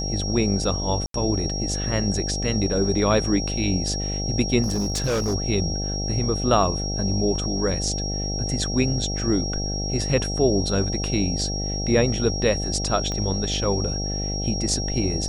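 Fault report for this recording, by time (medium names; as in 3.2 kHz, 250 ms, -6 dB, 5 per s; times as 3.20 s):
buzz 50 Hz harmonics 16 -28 dBFS
whine 5.6 kHz -29 dBFS
1.06–1.14 s: dropout 83 ms
4.62–5.35 s: clipped -19.5 dBFS
13.12 s: pop -16 dBFS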